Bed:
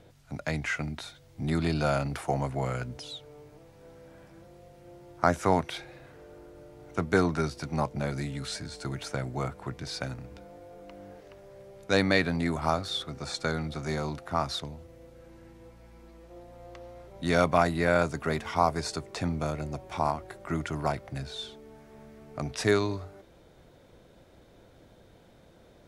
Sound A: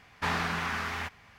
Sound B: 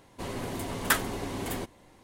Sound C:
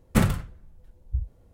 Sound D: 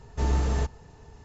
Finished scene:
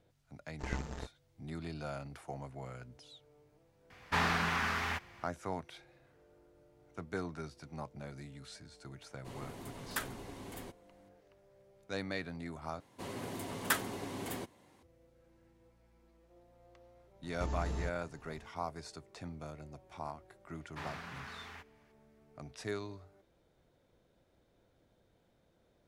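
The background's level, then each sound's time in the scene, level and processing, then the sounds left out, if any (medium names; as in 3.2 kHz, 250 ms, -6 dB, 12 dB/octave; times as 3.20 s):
bed -15 dB
0.41 s: add D -5.5 dB + power-law waveshaper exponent 3
3.90 s: add A -1 dB
9.06 s: add B -13 dB
12.80 s: replace with B -6.5 dB + high-pass 91 Hz
17.23 s: add D -8 dB + compression, threshold -25 dBFS
20.54 s: add A -15.5 dB
not used: C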